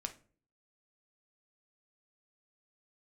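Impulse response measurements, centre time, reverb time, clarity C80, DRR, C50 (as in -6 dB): 7 ms, no single decay rate, 20.5 dB, 5.5 dB, 14.0 dB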